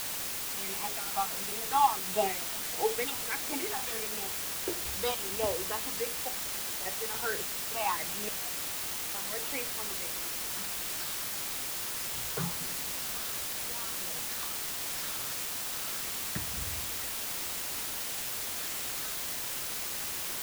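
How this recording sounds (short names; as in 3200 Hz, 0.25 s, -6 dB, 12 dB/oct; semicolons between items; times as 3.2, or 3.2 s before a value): phasing stages 6, 1.5 Hz, lowest notch 520–1500 Hz; random-step tremolo, depth 100%; a quantiser's noise floor 6-bit, dither triangular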